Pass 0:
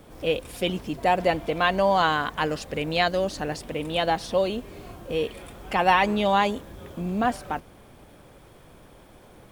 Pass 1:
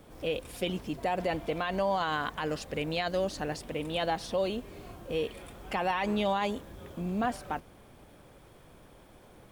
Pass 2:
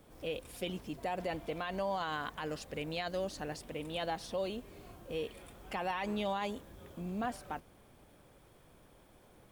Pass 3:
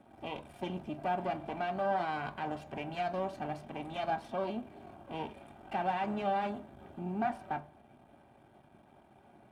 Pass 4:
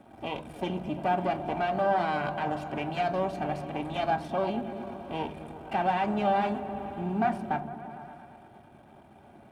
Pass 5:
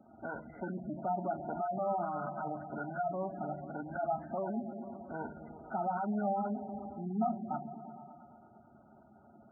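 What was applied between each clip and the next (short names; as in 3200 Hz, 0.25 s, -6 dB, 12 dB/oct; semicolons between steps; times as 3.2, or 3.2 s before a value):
limiter -16 dBFS, peak gain reduction 9 dB; gain -4.5 dB
high shelf 7300 Hz +4 dB; gain -6.5 dB
half-wave rectifier; band-pass 2800 Hz, Q 0.55; reverb RT60 0.35 s, pre-delay 3 ms, DRR 7.5 dB; gain -1.5 dB
repeats that get brighter 0.114 s, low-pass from 200 Hz, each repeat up 1 oct, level -6 dB; gain +6 dB
nonlinear frequency compression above 1200 Hz 4:1; spectral gate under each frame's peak -15 dB strong; small resonant body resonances 220/660/1400 Hz, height 6 dB; gain -8.5 dB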